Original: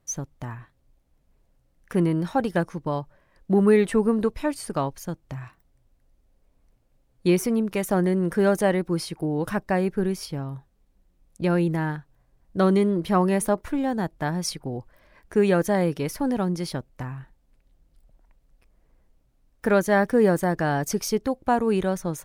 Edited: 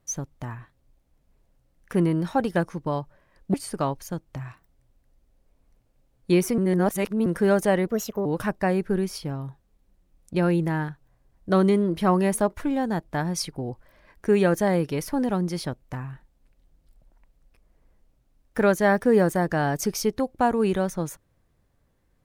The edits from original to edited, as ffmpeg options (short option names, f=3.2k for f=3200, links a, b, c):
-filter_complex "[0:a]asplit=6[a][b][c][d][e][f];[a]atrim=end=3.542[g];[b]atrim=start=4.498:end=7.542[h];[c]atrim=start=7.538:end=8.222,asetpts=PTS-STARTPTS,areverse[i];[d]atrim=start=8.218:end=8.834[j];[e]atrim=start=8.83:end=9.33,asetpts=PTS-STARTPTS,asetrate=57330,aresample=44100[k];[f]atrim=start=9.326[l];[g][h]acrossfade=d=0.004:c1=hsin:c2=hsin[m];[m][i]acrossfade=d=0.004:c1=hsin:c2=hsin[n];[n][j]acrossfade=d=0.004:c1=hsin:c2=hsin[o];[o][k]acrossfade=d=0.004:c1=hsin:c2=hsin[p];[p][l]acrossfade=d=0.004:c1=hsin:c2=hsin"